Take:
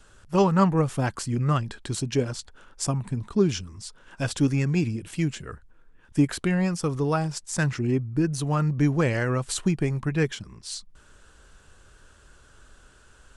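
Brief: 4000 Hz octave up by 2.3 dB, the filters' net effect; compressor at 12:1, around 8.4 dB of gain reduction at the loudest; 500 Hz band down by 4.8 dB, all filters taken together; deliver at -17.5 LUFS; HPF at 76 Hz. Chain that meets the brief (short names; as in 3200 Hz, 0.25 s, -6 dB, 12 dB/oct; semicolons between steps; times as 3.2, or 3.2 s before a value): HPF 76 Hz; bell 500 Hz -6.5 dB; bell 4000 Hz +3 dB; compressor 12:1, threshold -25 dBFS; gain +13.5 dB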